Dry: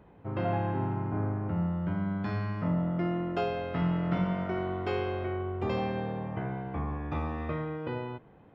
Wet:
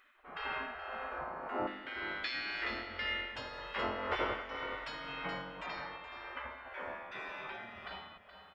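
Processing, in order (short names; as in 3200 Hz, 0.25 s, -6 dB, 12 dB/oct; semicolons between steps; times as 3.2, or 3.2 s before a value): spectral gate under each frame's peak -20 dB weak; 5.66–6.08 air absorption 150 m; echo 0.423 s -10 dB; tremolo 1.9 Hz, depth 44%; 1.67–3.36 ten-band EQ 125 Hz -11 dB, 250 Hz +3 dB, 500 Hz -9 dB, 1000 Hz -11 dB, 2000 Hz +8 dB, 4000 Hz +11 dB; narrowing echo 0.481 s, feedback 67%, band-pass 670 Hz, level -16.5 dB; gain +7.5 dB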